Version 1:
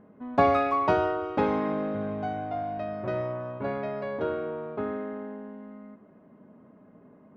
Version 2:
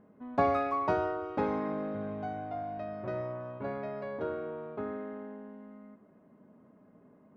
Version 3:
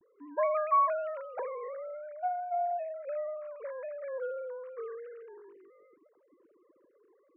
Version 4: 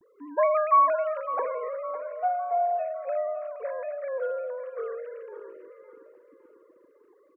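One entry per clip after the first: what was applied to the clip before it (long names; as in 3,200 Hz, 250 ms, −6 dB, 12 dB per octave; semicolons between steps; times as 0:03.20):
dynamic equaliser 3,100 Hz, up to −6 dB, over −52 dBFS, Q 2.1; level −5.5 dB
three sine waves on the formant tracks
repeating echo 558 ms, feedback 44%, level −13 dB; level +6 dB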